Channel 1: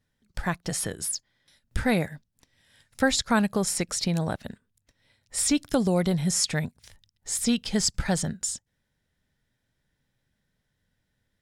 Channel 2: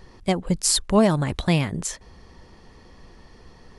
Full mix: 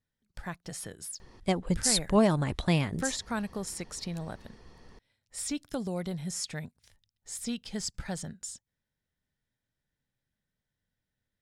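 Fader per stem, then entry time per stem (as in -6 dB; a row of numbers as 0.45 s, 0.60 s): -10.5 dB, -5.5 dB; 0.00 s, 1.20 s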